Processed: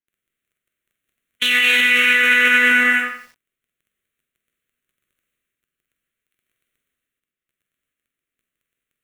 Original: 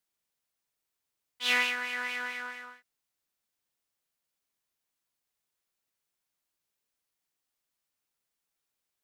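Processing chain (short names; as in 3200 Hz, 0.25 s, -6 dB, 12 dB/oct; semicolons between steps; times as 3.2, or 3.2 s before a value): Wiener smoothing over 9 samples; gate -45 dBFS, range -35 dB; EQ curve 150 Hz 0 dB, 270 Hz +11 dB, 680 Hz +1 dB, 1400 Hz +5 dB, 3100 Hz +9 dB; crackle 12/s -75 dBFS; fixed phaser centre 2100 Hz, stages 4; flutter echo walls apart 7.9 m, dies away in 0.26 s; non-linear reverb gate 0.45 s flat, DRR -2.5 dB; maximiser +32 dB; lo-fi delay 88 ms, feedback 35%, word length 6-bit, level -10 dB; gain -6 dB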